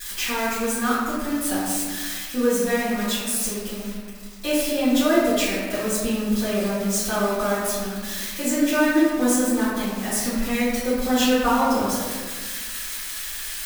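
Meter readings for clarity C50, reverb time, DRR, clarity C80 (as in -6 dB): -2.0 dB, 1.7 s, -14.0 dB, 0.5 dB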